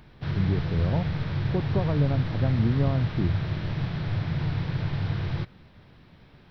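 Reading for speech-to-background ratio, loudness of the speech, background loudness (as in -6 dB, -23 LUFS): 1.0 dB, -28.5 LUFS, -29.5 LUFS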